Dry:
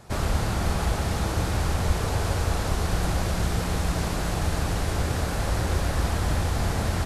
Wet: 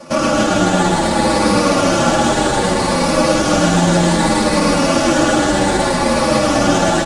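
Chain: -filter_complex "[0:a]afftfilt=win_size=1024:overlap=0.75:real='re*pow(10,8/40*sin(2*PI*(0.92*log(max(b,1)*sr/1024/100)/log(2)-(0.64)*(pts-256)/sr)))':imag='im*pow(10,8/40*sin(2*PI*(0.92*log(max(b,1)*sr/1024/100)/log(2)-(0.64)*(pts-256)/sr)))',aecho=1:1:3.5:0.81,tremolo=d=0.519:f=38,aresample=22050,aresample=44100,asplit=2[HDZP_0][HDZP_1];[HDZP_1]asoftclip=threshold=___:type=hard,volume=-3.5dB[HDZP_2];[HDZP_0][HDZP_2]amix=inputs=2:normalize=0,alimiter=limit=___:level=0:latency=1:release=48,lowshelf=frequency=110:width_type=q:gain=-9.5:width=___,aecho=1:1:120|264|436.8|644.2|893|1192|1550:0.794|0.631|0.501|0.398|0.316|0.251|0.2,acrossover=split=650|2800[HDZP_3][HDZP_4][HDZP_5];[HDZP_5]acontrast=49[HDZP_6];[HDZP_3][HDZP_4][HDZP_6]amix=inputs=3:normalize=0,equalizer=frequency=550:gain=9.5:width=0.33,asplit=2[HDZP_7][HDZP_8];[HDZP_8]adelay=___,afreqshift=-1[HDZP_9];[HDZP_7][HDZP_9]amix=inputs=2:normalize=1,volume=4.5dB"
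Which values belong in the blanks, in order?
-22.5dB, -16dB, 3, 8.9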